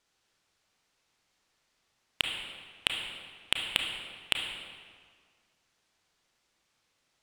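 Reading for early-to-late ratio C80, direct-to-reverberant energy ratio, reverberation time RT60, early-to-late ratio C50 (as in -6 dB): 5.0 dB, 2.0 dB, 1.8 s, 3.5 dB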